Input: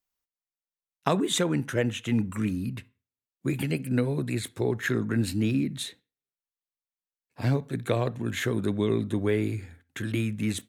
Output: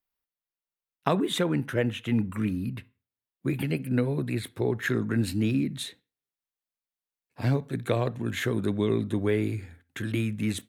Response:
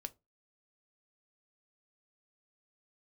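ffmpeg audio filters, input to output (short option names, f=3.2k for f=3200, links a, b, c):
-af "asetnsamples=n=441:p=0,asendcmd='4.82 equalizer g -3',equalizer=f=6.9k:w=1.4:g=-11"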